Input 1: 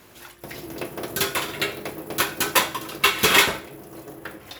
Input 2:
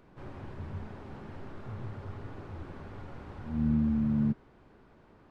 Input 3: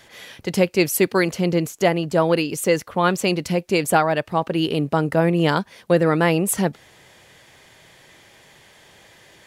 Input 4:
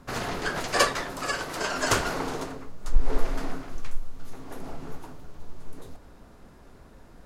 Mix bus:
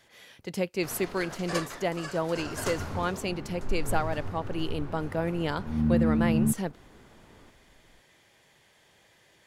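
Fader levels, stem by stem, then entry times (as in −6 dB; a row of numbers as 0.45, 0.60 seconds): muted, +3.0 dB, −11.5 dB, −11.0 dB; muted, 2.20 s, 0.00 s, 0.75 s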